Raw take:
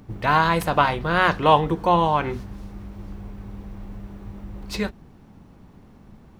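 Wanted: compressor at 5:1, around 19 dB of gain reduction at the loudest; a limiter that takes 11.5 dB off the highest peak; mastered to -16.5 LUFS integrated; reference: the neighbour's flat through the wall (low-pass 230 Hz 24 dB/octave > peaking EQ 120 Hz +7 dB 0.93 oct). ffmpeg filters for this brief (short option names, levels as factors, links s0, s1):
-af "acompressor=threshold=0.0224:ratio=5,alimiter=level_in=2.37:limit=0.0631:level=0:latency=1,volume=0.422,lowpass=f=230:w=0.5412,lowpass=f=230:w=1.3066,equalizer=f=120:t=o:w=0.93:g=7,volume=18.8"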